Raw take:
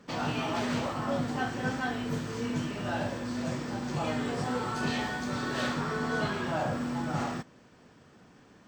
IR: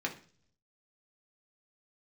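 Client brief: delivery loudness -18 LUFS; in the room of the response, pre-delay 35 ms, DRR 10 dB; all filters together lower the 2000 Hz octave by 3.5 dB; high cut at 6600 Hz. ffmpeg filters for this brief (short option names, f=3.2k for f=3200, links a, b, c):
-filter_complex "[0:a]lowpass=6.6k,equalizer=f=2k:t=o:g=-5,asplit=2[a][b];[1:a]atrim=start_sample=2205,adelay=35[c];[b][c]afir=irnorm=-1:irlink=0,volume=-14.5dB[d];[a][d]amix=inputs=2:normalize=0,volume=15dB"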